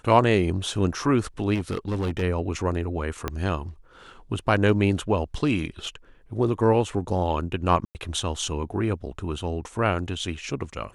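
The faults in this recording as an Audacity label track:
1.540000	2.230000	clipped -22.5 dBFS
3.280000	3.280000	pop -12 dBFS
7.850000	7.950000	gap 99 ms

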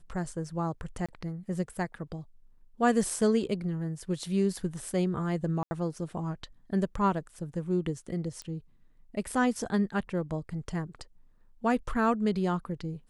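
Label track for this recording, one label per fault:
1.060000	1.090000	gap 26 ms
5.630000	5.710000	gap 80 ms
8.420000	8.420000	pop -26 dBFS

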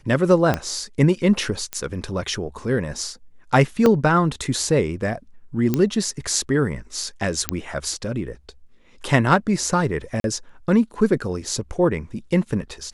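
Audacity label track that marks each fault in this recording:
0.540000	0.540000	pop -7 dBFS
1.730000	1.730000	pop -10 dBFS
3.860000	3.860000	gap 2.4 ms
5.740000	5.740000	pop -7 dBFS
7.490000	7.490000	pop -2 dBFS
10.200000	10.240000	gap 42 ms

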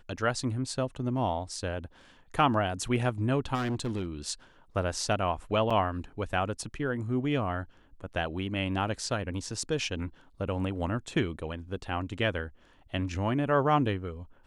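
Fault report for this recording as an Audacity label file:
3.540000	4.060000	clipped -27.5 dBFS
5.700000	5.710000	gap 5.4 ms

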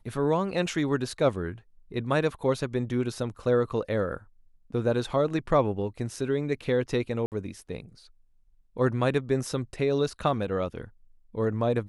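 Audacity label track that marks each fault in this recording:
7.260000	7.320000	gap 58 ms

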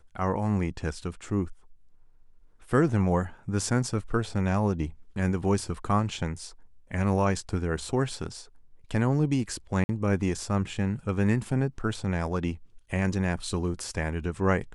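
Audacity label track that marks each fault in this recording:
9.840000	9.890000	gap 50 ms

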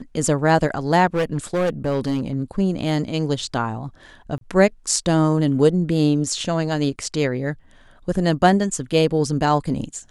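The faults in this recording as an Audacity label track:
1.060000	2.350000	clipped -16.5 dBFS
4.380000	4.410000	gap 32 ms

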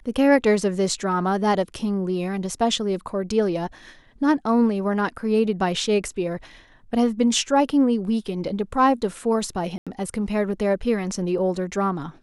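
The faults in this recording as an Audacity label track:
9.780000	9.870000	gap 86 ms

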